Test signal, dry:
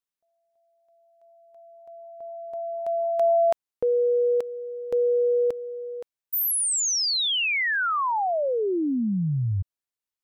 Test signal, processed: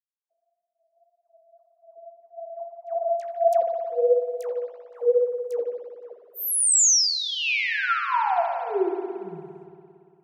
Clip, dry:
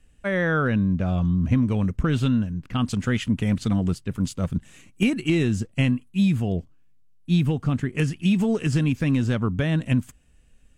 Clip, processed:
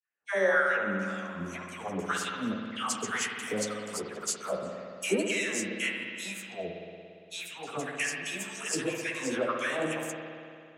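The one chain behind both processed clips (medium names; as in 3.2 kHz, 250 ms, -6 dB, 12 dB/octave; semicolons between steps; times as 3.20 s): level-controlled noise filter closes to 600 Hz, open at -20.5 dBFS; resonant high shelf 4.8 kHz +9.5 dB, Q 1.5; flange 1.7 Hz, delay 7.4 ms, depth 9.3 ms, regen +24%; phase dispersion lows, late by 109 ms, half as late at 1.1 kHz; LFO high-pass sine 1.9 Hz 410–2000 Hz; spring tank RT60 2.4 s, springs 57 ms, chirp 30 ms, DRR 2 dB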